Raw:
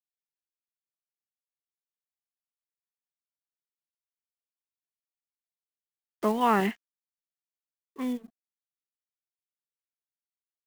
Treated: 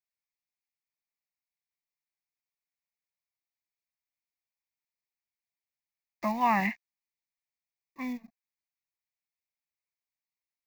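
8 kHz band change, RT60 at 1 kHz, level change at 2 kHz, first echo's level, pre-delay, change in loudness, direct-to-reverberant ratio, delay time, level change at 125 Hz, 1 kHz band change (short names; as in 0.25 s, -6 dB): n/a, none, +2.0 dB, none, none, -2.0 dB, none, none, n/a, -1.0 dB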